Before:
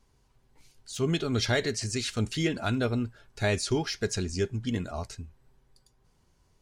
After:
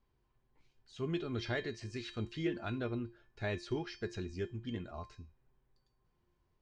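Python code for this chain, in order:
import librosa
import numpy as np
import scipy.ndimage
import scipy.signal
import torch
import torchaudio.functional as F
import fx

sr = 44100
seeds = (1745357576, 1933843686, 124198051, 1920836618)

y = scipy.signal.sosfilt(scipy.signal.butter(2, 3100.0, 'lowpass', fs=sr, output='sos'), x)
y = fx.comb_fb(y, sr, f0_hz=350.0, decay_s=0.36, harmonics='odd', damping=0.0, mix_pct=80)
y = F.gain(torch.from_numpy(y), 3.0).numpy()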